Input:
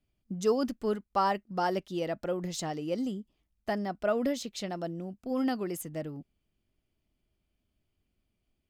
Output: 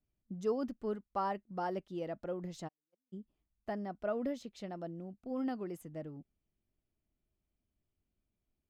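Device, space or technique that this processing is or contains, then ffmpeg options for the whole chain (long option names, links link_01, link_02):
through cloth: -filter_complex "[0:a]highshelf=frequency=2600:gain=-12,asplit=3[link_01][link_02][link_03];[link_01]afade=type=out:start_time=2.67:duration=0.02[link_04];[link_02]agate=range=-57dB:threshold=-24dB:ratio=16:detection=peak,afade=type=in:start_time=2.67:duration=0.02,afade=type=out:start_time=3.12:duration=0.02[link_05];[link_03]afade=type=in:start_time=3.12:duration=0.02[link_06];[link_04][link_05][link_06]amix=inputs=3:normalize=0,volume=-6.5dB"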